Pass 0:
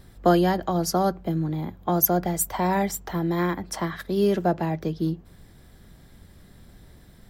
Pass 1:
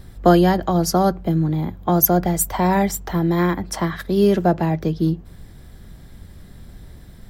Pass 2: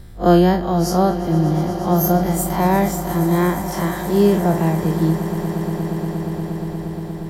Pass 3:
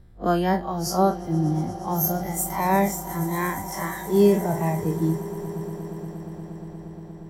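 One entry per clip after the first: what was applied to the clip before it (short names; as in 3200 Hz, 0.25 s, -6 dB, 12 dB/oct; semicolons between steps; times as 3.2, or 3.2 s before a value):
low shelf 140 Hz +6.5 dB; gain +4.5 dB
time blur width 83 ms; on a send: swelling echo 0.118 s, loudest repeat 8, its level -17 dB; on the sum: gain +2 dB
spectral noise reduction 10 dB; mismatched tape noise reduction decoder only; gain -1.5 dB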